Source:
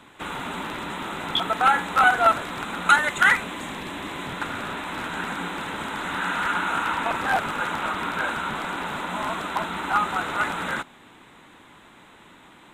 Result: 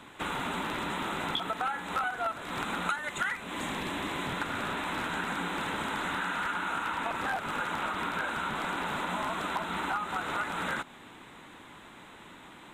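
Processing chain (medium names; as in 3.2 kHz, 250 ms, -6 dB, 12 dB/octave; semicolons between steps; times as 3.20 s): compression 10:1, threshold -29 dBFS, peak gain reduction 18 dB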